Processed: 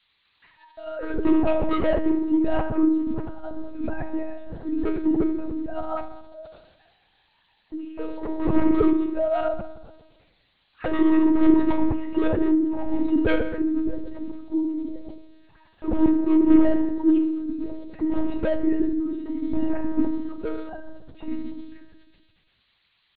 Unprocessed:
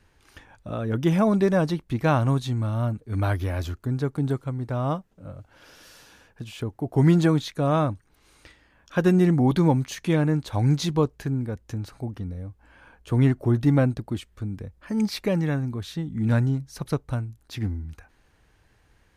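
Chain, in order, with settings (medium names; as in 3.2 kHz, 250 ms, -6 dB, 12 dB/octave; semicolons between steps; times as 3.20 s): formants replaced by sine waves; low-pass 2.1 kHz 24 dB/octave; gate -53 dBFS, range -8 dB; peaking EQ 1.5 kHz -11.5 dB 0.65 oct; comb of notches 1 kHz; added noise violet -47 dBFS; overload inside the chain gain 21.5 dB; tempo 0.76×; FDN reverb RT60 1.2 s, low-frequency decay 1.3×, high-frequency decay 0.5×, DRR -0.5 dB; monotone LPC vocoder at 8 kHz 290 Hz; speed mistake 44.1 kHz file played as 48 kHz; decay stretcher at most 61 dB/s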